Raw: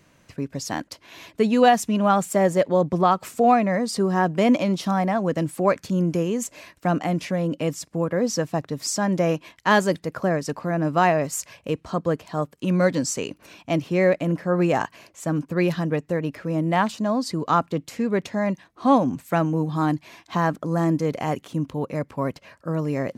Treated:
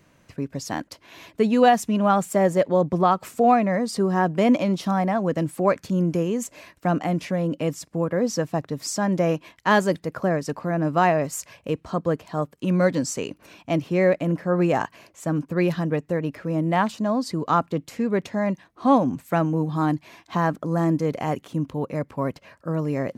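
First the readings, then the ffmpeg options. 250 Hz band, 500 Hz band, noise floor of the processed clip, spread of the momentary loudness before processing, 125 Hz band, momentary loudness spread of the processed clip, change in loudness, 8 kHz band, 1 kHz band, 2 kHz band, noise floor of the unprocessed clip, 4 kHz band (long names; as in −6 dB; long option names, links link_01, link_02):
0.0 dB, 0.0 dB, −60 dBFS, 10 LU, 0.0 dB, 10 LU, −0.5 dB, −3.0 dB, −0.5 dB, −1.0 dB, −60 dBFS, −2.5 dB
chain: -af "equalizer=frequency=6100:width=0.36:gain=-3"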